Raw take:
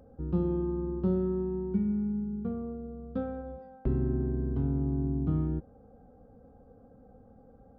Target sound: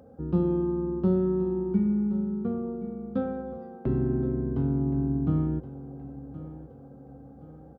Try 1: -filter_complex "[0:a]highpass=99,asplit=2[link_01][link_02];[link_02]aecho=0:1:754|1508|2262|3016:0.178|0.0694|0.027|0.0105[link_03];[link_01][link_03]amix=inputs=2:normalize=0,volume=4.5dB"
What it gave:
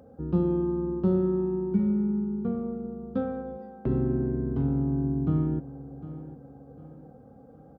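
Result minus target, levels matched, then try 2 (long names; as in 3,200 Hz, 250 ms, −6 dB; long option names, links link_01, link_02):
echo 318 ms early
-filter_complex "[0:a]highpass=99,asplit=2[link_01][link_02];[link_02]aecho=0:1:1072|2144|3216|4288:0.178|0.0694|0.027|0.0105[link_03];[link_01][link_03]amix=inputs=2:normalize=0,volume=4.5dB"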